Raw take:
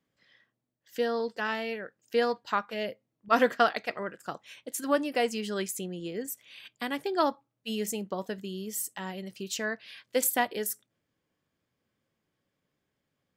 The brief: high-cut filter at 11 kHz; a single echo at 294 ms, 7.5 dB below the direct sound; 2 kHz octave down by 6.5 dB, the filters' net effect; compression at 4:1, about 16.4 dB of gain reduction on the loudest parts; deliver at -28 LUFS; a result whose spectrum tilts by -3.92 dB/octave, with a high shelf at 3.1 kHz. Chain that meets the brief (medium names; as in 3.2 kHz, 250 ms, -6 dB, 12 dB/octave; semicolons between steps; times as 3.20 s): low-pass 11 kHz; peaking EQ 2 kHz -7.5 dB; treble shelf 3.1 kHz -3.5 dB; compression 4:1, threshold -40 dBFS; delay 294 ms -7.5 dB; trim +15 dB